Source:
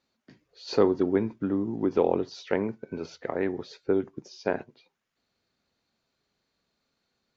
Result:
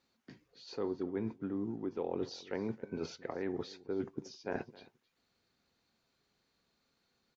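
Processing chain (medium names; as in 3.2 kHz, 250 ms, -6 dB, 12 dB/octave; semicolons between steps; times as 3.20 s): band-stop 610 Hz, Q 12; reverse; compression 6:1, threshold -34 dBFS, peak gain reduction 17 dB; reverse; delay 267 ms -20.5 dB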